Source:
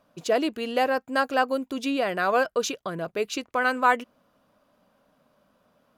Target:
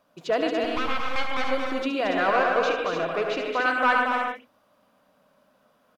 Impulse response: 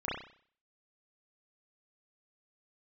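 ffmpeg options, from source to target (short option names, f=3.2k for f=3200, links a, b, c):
-filter_complex "[0:a]asettb=1/sr,asplit=3[a][b][c];[a]atrim=end=0.644[d];[b]atrim=start=0.64:end=1.49,asetpts=PTS-STARTPTS,afade=t=in:d=0.004:c=qsin,afade=t=out:st=0.846:d=0.004:c=qsin,aeval=exprs='abs(val(0))':c=same[e];[c]atrim=start=1.486[f];[d][e]acrossfade=d=0.004:c1=hsin:c2=qsin[g];[g][f]acrossfade=d=0.004:c1=qsin:c2=hsin,asettb=1/sr,asplit=3[h][i][j];[h]atrim=end=2.054[k];[i]atrim=start=2.05:end=3.39,asetpts=PTS-STARTPTS,afade=t=in:d=0.004:c=qsin,afade=t=out:st=1.336:d=0.004:c=qsin,asplit=2[l][m];[m]highpass=f=720:p=1,volume=16dB,asoftclip=type=tanh:threshold=-17dB[n];[l][n]amix=inputs=2:normalize=0,lowpass=f=1.7k:p=1,volume=-6dB[o];[j]atrim=start=3.386[p];[k][o]acrossfade=d=0.004:c1=hsin:c2=qsin[q];[q][p]acrossfade=d=0.004:c1=qsin:c2=hsin,aeval=exprs='clip(val(0),-1,0.141)':c=same,lowshelf=f=240:g=-8,aecho=1:1:227.4|285.7:0.501|0.447,acrossover=split=4800[r][s];[s]acompressor=threshold=-60dB:ratio=4:attack=1:release=60[t];[r][t]amix=inputs=2:normalize=0,asplit=2[u][v];[v]highshelf=f=5.1k:g=9.5[w];[1:a]atrim=start_sample=2205,atrim=end_sample=3528,adelay=72[x];[w][x]afir=irnorm=-1:irlink=0,volume=-10dB[y];[u][y]amix=inputs=2:normalize=0"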